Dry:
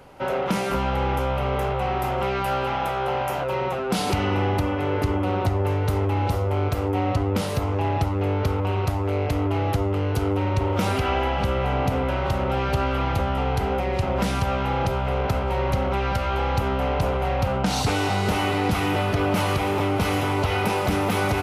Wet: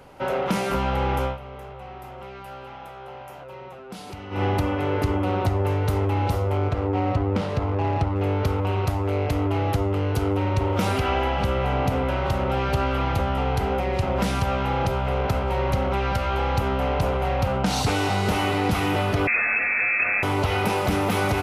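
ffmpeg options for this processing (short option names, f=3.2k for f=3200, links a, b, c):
-filter_complex "[0:a]asettb=1/sr,asplit=3[a][b][c];[a]atrim=end=6.574[d];[b]atrim=start=6.57:end=8.16,asetpts=PTS-STARTPTS,afade=t=in:d=0.004:c=qsin,afade=t=out:st=1.586:d=0.004:c=qsin,adynamicsmooth=sensitivity=2:basefreq=2.4k[e];[c]atrim=start=8.156[f];[d][e]acrossfade=d=0.004:c1=hsin:c2=qsin[g];[g][f]acrossfade=d=0.004:c1=qsin:c2=hsin,asettb=1/sr,asplit=3[h][i][j];[h]atrim=end=19.274[k];[i]atrim=start=19.27:end=20.23,asetpts=PTS-STARTPTS,afade=t=in:d=0.004:c=qsin,afade=t=out:st=0.956:d=0.004:c=qsin,lowpass=f=2.3k:t=q:w=0.5098,lowpass=f=2.3k:t=q:w=0.6013,lowpass=f=2.3k:t=q:w=0.9,lowpass=f=2.3k:t=q:w=2.563,afreqshift=-2700[l];[j]atrim=start=20.226[m];[k][l]acrossfade=d=0.004:c1=hsin:c2=qsin[n];[n][m]acrossfade=d=0.004:c1=qsin:c2=hsin,asplit=3[o][p][q];[o]atrim=end=1.38,asetpts=PTS-STARTPTS,afade=t=out:st=1.25:d=0.13:silence=0.188365[r];[p]atrim=start=1.38:end=4.3,asetpts=PTS-STARTPTS,volume=-14.5dB[s];[q]atrim=start=4.3,asetpts=PTS-STARTPTS,afade=t=in:d=0.13:silence=0.188365[t];[r][s][t]concat=n=3:v=0:a=1"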